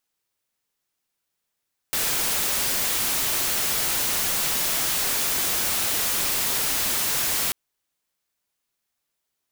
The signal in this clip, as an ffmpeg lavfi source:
-f lavfi -i "anoisesrc=c=white:a=0.109:d=5.59:r=44100:seed=1"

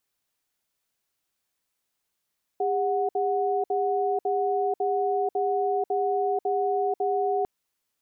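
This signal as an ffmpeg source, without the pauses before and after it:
-f lavfi -i "aevalsrc='0.0562*(sin(2*PI*403*t)+sin(2*PI*737*t))*clip(min(mod(t,0.55),0.49-mod(t,0.55))/0.005,0,1)':d=4.85:s=44100"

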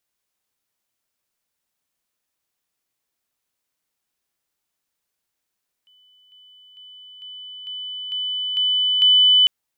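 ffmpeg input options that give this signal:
-f lavfi -i "aevalsrc='pow(10,(-52.5+6*floor(t/0.45))/20)*sin(2*PI*3000*t)':d=3.6:s=44100"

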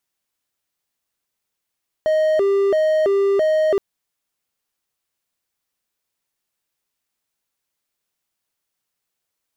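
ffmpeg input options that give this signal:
-f lavfi -i "aevalsrc='0.251*(1-4*abs(mod((510*t+114/1.5*(0.5-abs(mod(1.5*t,1)-0.5)))+0.25,1)-0.5))':d=1.72:s=44100"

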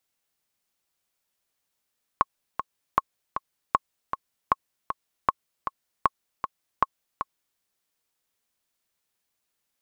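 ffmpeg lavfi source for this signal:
-f lavfi -i "aevalsrc='pow(10,(-5.5-8.5*gte(mod(t,2*60/156),60/156))/20)*sin(2*PI*1090*mod(t,60/156))*exp(-6.91*mod(t,60/156)/0.03)':d=5.38:s=44100"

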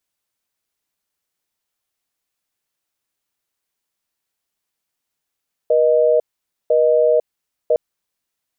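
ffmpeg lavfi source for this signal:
-f lavfi -i "aevalsrc='0.2*(sin(2*PI*480*t)+sin(2*PI*620*t))*clip(min(mod(t,1),0.5-mod(t,1))/0.005,0,1)':d=2.06:s=44100"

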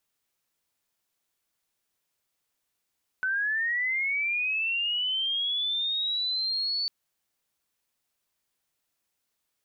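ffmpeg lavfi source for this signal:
-f lavfi -i "aevalsrc='pow(10,(-24.5-1.5*t/3.65)/20)*sin(2*PI*(1500*t+3000*t*t/(2*3.65)))':d=3.65:s=44100"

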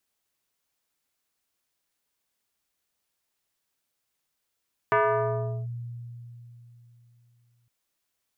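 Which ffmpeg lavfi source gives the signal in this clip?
-f lavfi -i "aevalsrc='0.133*pow(10,-3*t/3.44)*sin(2*PI*119*t+2.8*clip(1-t/0.75,0,1)*sin(2*PI*4.56*119*t))':d=2.76:s=44100"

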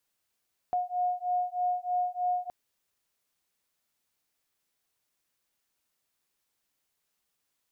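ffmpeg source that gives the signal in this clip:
-f lavfi -i "aevalsrc='0.0316*(sin(2*PI*719*t)+sin(2*PI*722.2*t))':d=1.77:s=44100"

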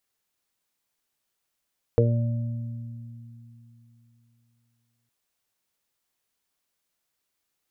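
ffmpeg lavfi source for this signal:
-f lavfi -i "aevalsrc='0.126*pow(10,-3*t/3.2)*sin(2*PI*117*t)+0.0422*pow(10,-3*t/3.38)*sin(2*PI*234*t)+0.0447*pow(10,-3*t/0.48)*sin(2*PI*351*t)+0.224*pow(10,-3*t/0.23)*sin(2*PI*468*t)+0.0398*pow(10,-3*t/1.33)*sin(2*PI*585*t)':d=3.11:s=44100"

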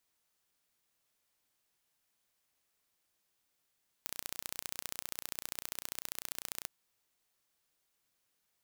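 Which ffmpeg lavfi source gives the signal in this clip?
-f lavfi -i "aevalsrc='0.316*eq(mod(n,1465),0)*(0.5+0.5*eq(mod(n,2930),0))':d=2.61:s=44100"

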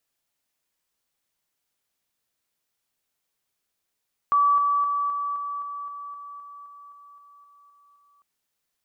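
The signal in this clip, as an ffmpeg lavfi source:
-f lavfi -i "aevalsrc='pow(10,(-16-3*floor(t/0.26))/20)*sin(2*PI*1150*t)':d=3.9:s=44100"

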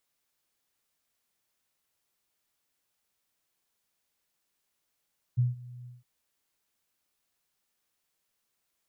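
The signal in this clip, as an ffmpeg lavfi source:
-f lavfi -i "aevalsrc='0.1*sin(2*PI*123*t)':d=0.662:s=44100,afade=t=in:d=0.021,afade=t=out:st=0.021:d=0.159:silence=0.0841,afade=t=out:st=0.49:d=0.172"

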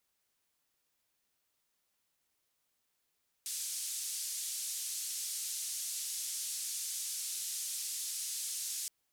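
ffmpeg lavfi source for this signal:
-f lavfi -i "anoisesrc=c=white:d=5.42:r=44100:seed=1,highpass=f=5400,lowpass=f=9700,volume=-27.2dB"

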